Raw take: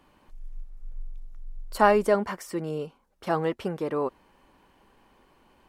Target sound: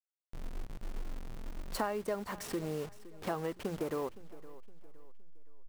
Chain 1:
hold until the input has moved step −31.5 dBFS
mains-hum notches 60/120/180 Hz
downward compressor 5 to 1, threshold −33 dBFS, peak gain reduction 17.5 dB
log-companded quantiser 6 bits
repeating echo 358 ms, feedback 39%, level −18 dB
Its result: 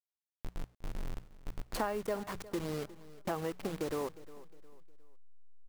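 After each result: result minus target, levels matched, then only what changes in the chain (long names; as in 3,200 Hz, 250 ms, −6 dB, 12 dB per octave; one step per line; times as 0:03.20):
echo 157 ms early; hold until the input has moved: distortion +4 dB
change: repeating echo 515 ms, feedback 39%, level −18 dB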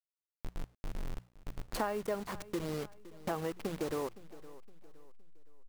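hold until the input has moved: distortion +4 dB
change: hold until the input has moved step −38 dBFS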